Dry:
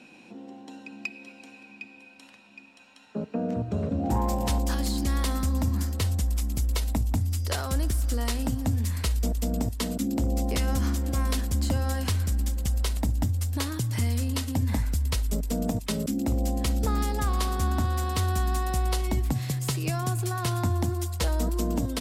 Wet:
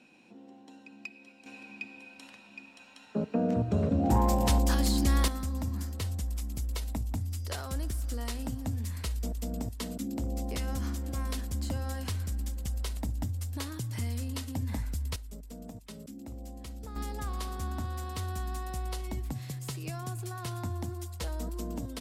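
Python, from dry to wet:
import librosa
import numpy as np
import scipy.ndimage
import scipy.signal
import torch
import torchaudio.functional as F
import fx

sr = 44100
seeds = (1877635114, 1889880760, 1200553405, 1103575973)

y = fx.gain(x, sr, db=fx.steps((0.0, -8.5), (1.46, 1.0), (5.28, -7.5), (15.16, -17.0), (16.96, -9.5)))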